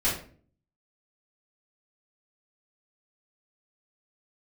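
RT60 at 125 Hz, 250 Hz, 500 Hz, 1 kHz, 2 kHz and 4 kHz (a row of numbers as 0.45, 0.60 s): 0.75, 0.65, 0.55, 0.40, 0.40, 0.30 s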